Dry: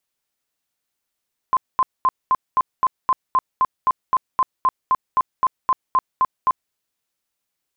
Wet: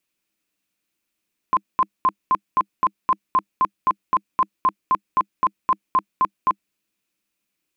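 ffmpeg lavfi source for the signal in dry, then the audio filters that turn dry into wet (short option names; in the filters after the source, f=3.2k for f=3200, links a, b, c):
-f lavfi -i "aevalsrc='0.237*sin(2*PI*1040*mod(t,0.26))*lt(mod(t,0.26),40/1040)':d=5.2:s=44100"
-af "equalizer=f=200:t=o:w=0.33:g=11,equalizer=f=315:t=o:w=0.33:g=11,equalizer=f=800:t=o:w=0.33:g=-5,equalizer=f=2.5k:t=o:w=0.33:g=8"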